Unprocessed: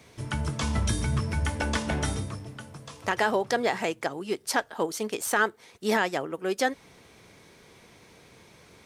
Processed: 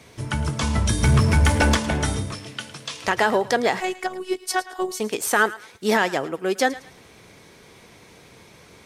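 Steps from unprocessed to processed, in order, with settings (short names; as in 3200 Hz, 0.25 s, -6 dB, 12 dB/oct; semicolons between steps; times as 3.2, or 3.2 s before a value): 1.03–1.75 sample leveller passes 2; 2.32–3.08 weighting filter D; 3.8–5 robotiser 371 Hz; on a send: thinning echo 0.109 s, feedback 32%, high-pass 880 Hz, level -15.5 dB; on the sum: gain +5.5 dB; MP3 80 kbps 44100 Hz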